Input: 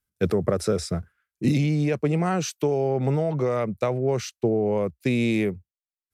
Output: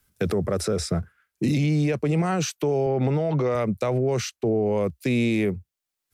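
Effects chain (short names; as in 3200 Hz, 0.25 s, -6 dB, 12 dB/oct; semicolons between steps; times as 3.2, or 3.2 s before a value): limiter -20 dBFS, peak gain reduction 11.5 dB; 2.86–3.55 BPF 100–4400 Hz; three-band squash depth 40%; gain +4.5 dB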